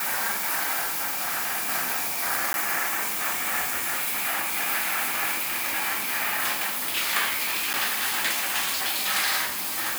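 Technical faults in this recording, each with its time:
0:00.80–0:01.70: clipping −23.5 dBFS
0:02.53–0:02.54: drop-out 11 ms
0:07.73–0:07.74: drop-out 8.4 ms

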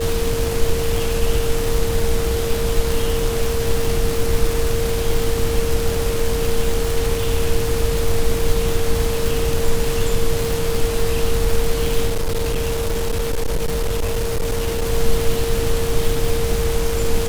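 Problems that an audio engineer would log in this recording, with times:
surface crackle 340 per second −20 dBFS
whistle 460 Hz −22 dBFS
0:12.07–0:14.87: clipping −16 dBFS

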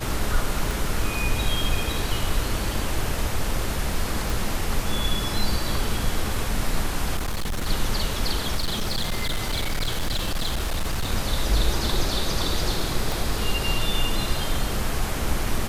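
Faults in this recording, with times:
0:00.71: click
0:04.30: click
0:07.16–0:07.67: clipping −22.5 dBFS
0:08.55–0:11.12: clipping −20.5 dBFS
0:13.12: click

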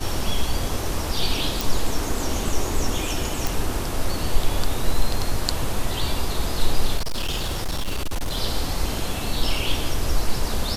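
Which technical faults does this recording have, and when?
0:01.61: click
0:03.47: click
0:06.97–0:08.38: clipping −20.5 dBFS

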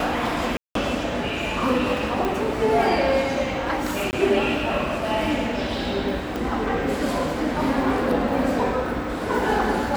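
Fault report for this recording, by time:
0:00.57–0:00.75: drop-out 183 ms
0:02.25: click
0:04.11–0:04.13: drop-out 19 ms
0:06.36: click

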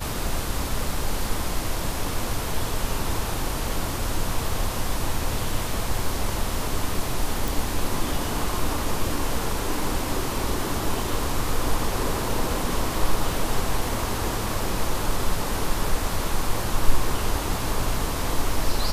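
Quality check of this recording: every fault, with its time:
0:07.48: click

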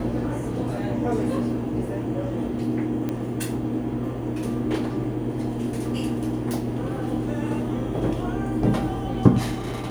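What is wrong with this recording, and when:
0:03.09: click −16 dBFS

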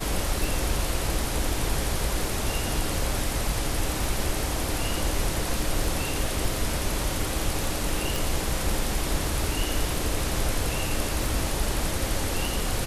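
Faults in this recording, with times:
scratch tick 33 1/3 rpm
0:08.16: click

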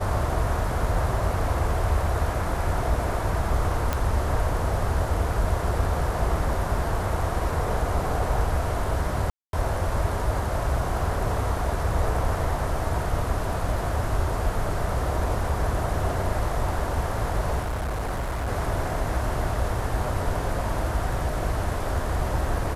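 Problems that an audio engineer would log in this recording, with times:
0:03.93: click −10 dBFS
0:09.30–0:09.53: drop-out 232 ms
0:17.62–0:18.49: clipping −24.5 dBFS

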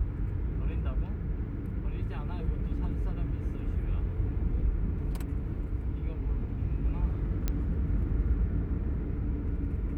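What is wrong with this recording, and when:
0:07.48: click −16 dBFS

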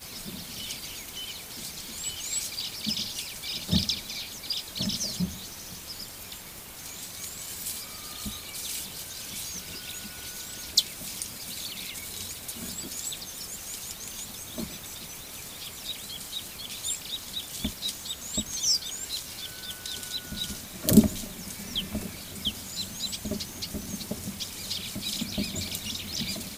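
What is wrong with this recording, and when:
surface crackle 140 per second −40 dBFS

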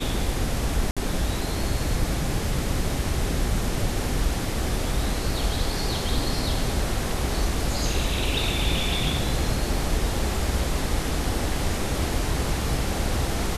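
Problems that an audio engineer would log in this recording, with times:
0:00.91–0:00.97: drop-out 56 ms

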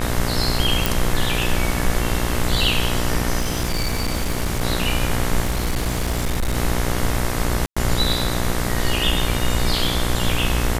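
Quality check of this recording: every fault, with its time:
mains buzz 60 Hz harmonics 37 −24 dBFS
0:00.86: click
0:03.39–0:04.62: clipping −17 dBFS
0:05.42–0:06.57: clipping −17 dBFS
0:07.66–0:07.76: drop-out 105 ms

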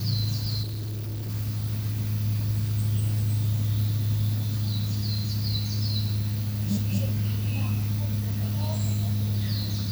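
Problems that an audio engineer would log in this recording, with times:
0:00.62–0:01.30: clipping −29.5 dBFS

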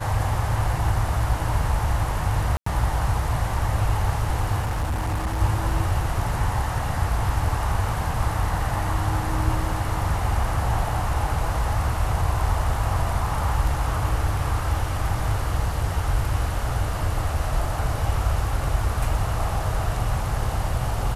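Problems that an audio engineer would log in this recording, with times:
0:02.57–0:02.66: drop-out 94 ms
0:04.60–0:05.41: clipping −21 dBFS

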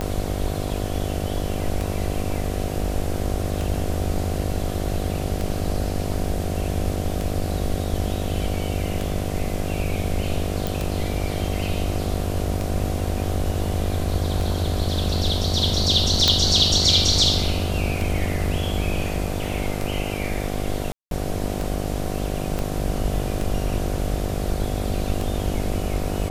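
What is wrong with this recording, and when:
mains buzz 50 Hz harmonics 15 −28 dBFS
scratch tick 33 1/3 rpm −13 dBFS
0:10.67: click
0:16.28: click −2 dBFS
0:20.92–0:21.11: drop-out 192 ms
0:22.59: click

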